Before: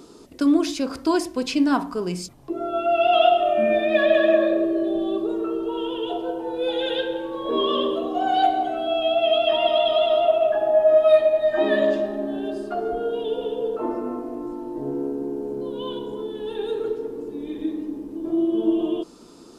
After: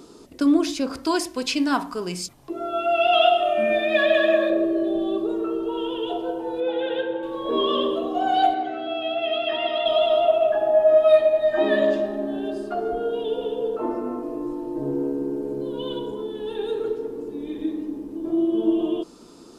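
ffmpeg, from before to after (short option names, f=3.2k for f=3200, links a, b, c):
-filter_complex "[0:a]asettb=1/sr,asplit=3[a][b][c];[a]atrim=end=1.034[d];[b]atrim=start=1.03:end=4.5,asetpts=PTS-STARTPTS,afade=t=in:d=0.004:c=qsin,afade=t=out:st=3.466:d=0.004:c=qsin,tiltshelf=f=910:g=-4[e];[c]atrim=start=4.496[f];[d][e]acrossfade=d=0.004:c1=hsin:c2=qsin[g];[g][f]acrossfade=d=0.004:c1=qsin:c2=hsin,asettb=1/sr,asplit=3[h][i][j];[h]atrim=end=6.604[k];[i]atrim=start=6.6:end=7.23,asetpts=PTS-STARTPTS,afade=t=in:d=0.004:c=qsin,afade=t=out:st=0.626:d=0.004:c=qsin,highpass=110,lowpass=2.2k[l];[j]atrim=start=7.226[m];[k][l]acrossfade=d=0.004:c1=hsin:c2=qsin[n];[n][m]acrossfade=d=0.004:c1=qsin:c2=hsin,asettb=1/sr,asplit=3[o][p][q];[o]atrim=end=8.544[r];[p]atrim=start=8.54:end=9.86,asetpts=PTS-STARTPTS,afade=t=in:d=0.004:c=qsin,afade=t=out:st=1.316:d=0.004:c=qsin,highpass=120,equalizer=f=190:t=q:w=4:g=-8,equalizer=f=640:t=q:w=4:g=-6,equalizer=f=1k:t=q:w=4:g=-6,equalizer=f=1.9k:t=q:w=4:g=7,equalizer=f=3.2k:t=q:w=4:g=-4,lowpass=f=5.4k:w=0.5412,lowpass=f=5.4k:w=1.3066[s];[q]atrim=start=9.856[t];[r][s]acrossfade=d=0.004:c1=hsin:c2=qsin[u];[u][t]acrossfade=d=0.004:c1=qsin:c2=hsin,asettb=1/sr,asplit=3[v][w][x];[v]atrim=end=14.224[y];[w]atrim=start=14.22:end=16.11,asetpts=PTS-STARTPTS,afade=t=in:d=0.004:c=qsin,afade=t=out:st=1.886:d=0.004:c=qsin,aecho=1:1:6.4:0.65,atrim=end_sample=83349[z];[x]atrim=start=16.106[aa];[y][z]acrossfade=d=0.004:c1=hsin:c2=qsin[ab];[ab][aa]acrossfade=d=0.004:c1=qsin:c2=hsin"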